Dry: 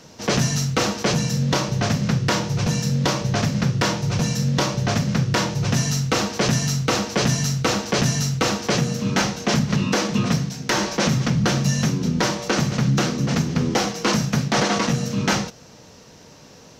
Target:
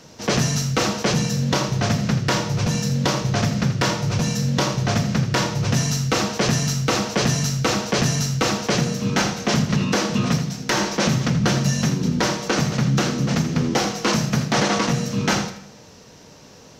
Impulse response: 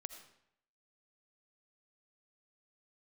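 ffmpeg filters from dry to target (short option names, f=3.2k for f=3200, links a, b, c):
-filter_complex "[0:a]asplit=2[a][b];[1:a]atrim=start_sample=2205,adelay=82[c];[b][c]afir=irnorm=-1:irlink=0,volume=-6.5dB[d];[a][d]amix=inputs=2:normalize=0"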